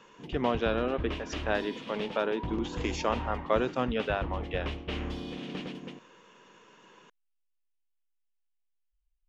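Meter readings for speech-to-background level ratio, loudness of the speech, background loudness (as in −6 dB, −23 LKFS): 7.0 dB, −32.0 LKFS, −39.0 LKFS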